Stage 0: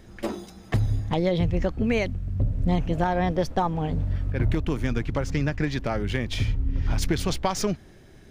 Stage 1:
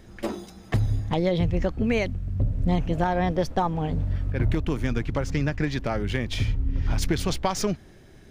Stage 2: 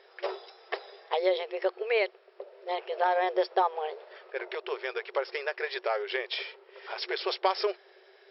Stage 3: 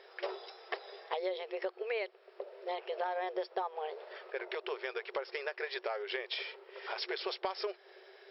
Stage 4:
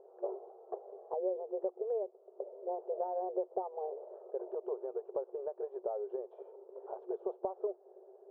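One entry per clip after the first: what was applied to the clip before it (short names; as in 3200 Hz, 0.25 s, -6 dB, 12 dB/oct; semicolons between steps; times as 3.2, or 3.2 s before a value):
nothing audible
FFT band-pass 360–5500 Hz
compressor 3:1, threshold -37 dBFS, peak gain reduction 13 dB; gain +1 dB
inverse Chebyshev low-pass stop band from 1900 Hz, stop band 50 dB; gain +2 dB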